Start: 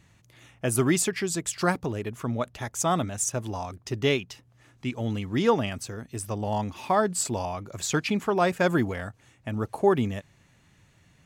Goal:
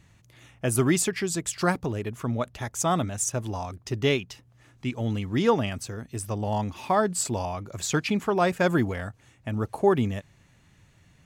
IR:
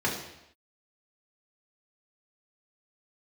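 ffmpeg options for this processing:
-af "lowshelf=f=95:g=5"

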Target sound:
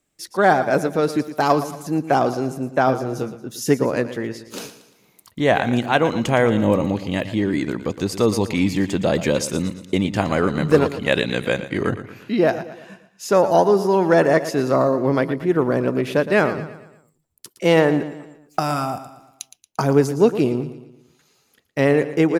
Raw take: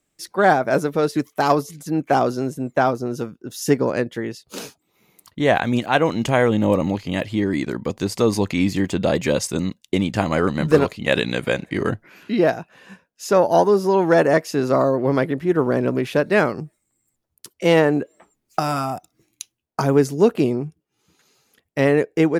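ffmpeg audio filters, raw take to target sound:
-filter_complex "[0:a]asettb=1/sr,asplit=3[a][b][c];[a]atrim=end=2.854[d];[b]atrim=start=2.85:end=3.36,asetpts=PTS-STARTPTS,afade=t=in:d=0.004:c=qsin,afade=t=out:st=0.506:d=0.004:c=qsin,asplit=2[e][f];[f]adelay=23,volume=-6dB[g];[e][g]amix=inputs=2:normalize=0,atrim=end_sample=22491[h];[c]atrim=start=3.356[i];[d][h]acrossfade=d=0.004:c1=hsin:c2=qsin[j];[j][i]acrossfade=d=0.004:c1=qsin:c2=hsin,asplit=2[k][l];[l]aecho=0:1:115|230|345|460|575:0.224|0.103|0.0474|0.0218|0.01[m];[k][m]amix=inputs=2:normalize=0"

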